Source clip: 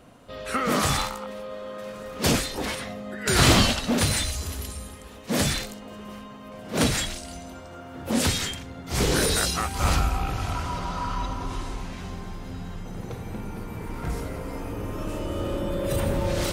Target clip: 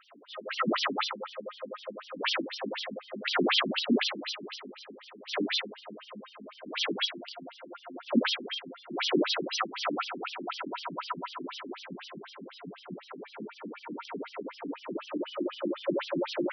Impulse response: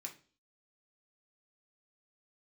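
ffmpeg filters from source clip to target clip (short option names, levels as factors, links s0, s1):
-filter_complex "[0:a]asoftclip=type=hard:threshold=0.211,highshelf=f=6100:g=3,acrossover=split=250|3900[s0][s1][s2];[s2]aeval=exprs='0.0299*(abs(mod(val(0)/0.0299+3,4)-2)-1)':c=same[s3];[s0][s1][s3]amix=inputs=3:normalize=0,bandreject=f=162.8:t=h:w=4,bandreject=f=325.6:t=h:w=4,bandreject=f=488.4:t=h:w=4,bandreject=f=651.2:t=h:w=4,bandreject=f=814:t=h:w=4,bandreject=f=976.8:t=h:w=4,bandreject=f=1139.6:t=h:w=4,bandreject=f=1302.4:t=h:w=4,bandreject=f=1465.2:t=h:w=4,bandreject=f=1628:t=h:w=4,bandreject=f=1790.8:t=h:w=4,bandreject=f=1953.6:t=h:w=4,bandreject=f=2116.4:t=h:w=4,bandreject=f=2279.2:t=h:w=4,bandreject=f=2442:t=h:w=4,bandreject=f=2604.8:t=h:w=4,bandreject=f=2767.6:t=h:w=4,bandreject=f=2930.4:t=h:w=4,bandreject=f=3093.2:t=h:w=4,bandreject=f=3256:t=h:w=4,bandreject=f=3418.8:t=h:w=4,bandreject=f=3581.6:t=h:w=4,bandreject=f=3744.4:t=h:w=4,bandreject=f=3907.2:t=h:w=4,bandreject=f=4070:t=h:w=4,bandreject=f=4232.8:t=h:w=4,bandreject=f=4395.6:t=h:w=4,bandreject=f=4558.4:t=h:w=4,bandreject=f=4721.2:t=h:w=4,asplit=2[s4][s5];[1:a]atrim=start_sample=2205,asetrate=57330,aresample=44100,highshelf=f=2300:g=-3[s6];[s5][s6]afir=irnorm=-1:irlink=0,volume=1.41[s7];[s4][s7]amix=inputs=2:normalize=0,afftfilt=real='re*between(b*sr/1024,240*pow(4300/240,0.5+0.5*sin(2*PI*4*pts/sr))/1.41,240*pow(4300/240,0.5+0.5*sin(2*PI*4*pts/sr))*1.41)':imag='im*between(b*sr/1024,240*pow(4300/240,0.5+0.5*sin(2*PI*4*pts/sr))/1.41,240*pow(4300/240,0.5+0.5*sin(2*PI*4*pts/sr))*1.41)':win_size=1024:overlap=0.75,volume=1.19"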